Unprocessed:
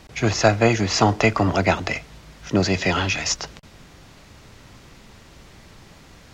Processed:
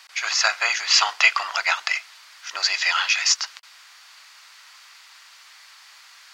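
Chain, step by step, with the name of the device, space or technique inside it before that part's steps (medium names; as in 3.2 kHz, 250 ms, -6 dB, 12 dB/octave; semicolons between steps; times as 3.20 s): headphones lying on a table (high-pass 1.1 kHz 24 dB/octave; peaking EQ 4.6 kHz +5.5 dB 0.23 oct); 0.86–1.47 s: dynamic bell 3 kHz, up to +7 dB, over -38 dBFS, Q 2.2; trim +3.5 dB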